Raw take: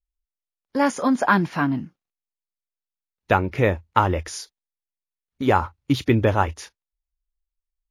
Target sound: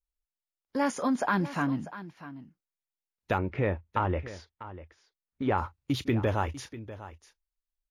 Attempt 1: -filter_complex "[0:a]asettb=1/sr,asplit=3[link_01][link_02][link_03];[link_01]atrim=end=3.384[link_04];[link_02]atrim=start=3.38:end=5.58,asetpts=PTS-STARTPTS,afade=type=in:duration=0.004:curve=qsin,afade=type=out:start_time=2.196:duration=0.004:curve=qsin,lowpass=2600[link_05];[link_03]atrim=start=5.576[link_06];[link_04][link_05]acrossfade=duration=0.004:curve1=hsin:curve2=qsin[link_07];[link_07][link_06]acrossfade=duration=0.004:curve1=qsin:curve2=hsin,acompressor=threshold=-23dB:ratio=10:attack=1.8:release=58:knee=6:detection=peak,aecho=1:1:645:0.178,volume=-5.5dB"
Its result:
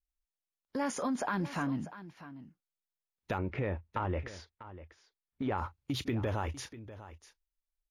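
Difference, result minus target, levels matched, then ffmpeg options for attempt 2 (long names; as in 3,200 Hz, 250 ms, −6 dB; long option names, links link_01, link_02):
downward compressor: peak gain reduction +7.5 dB
-filter_complex "[0:a]asettb=1/sr,asplit=3[link_01][link_02][link_03];[link_01]atrim=end=3.384[link_04];[link_02]atrim=start=3.38:end=5.58,asetpts=PTS-STARTPTS,afade=type=in:duration=0.004:curve=qsin,afade=type=out:start_time=2.196:duration=0.004:curve=qsin,lowpass=2600[link_05];[link_03]atrim=start=5.576[link_06];[link_04][link_05]acrossfade=duration=0.004:curve1=hsin:curve2=qsin[link_07];[link_07][link_06]acrossfade=duration=0.004:curve1=qsin:curve2=hsin,acompressor=threshold=-14.5dB:ratio=10:attack=1.8:release=58:knee=6:detection=peak,aecho=1:1:645:0.178,volume=-5.5dB"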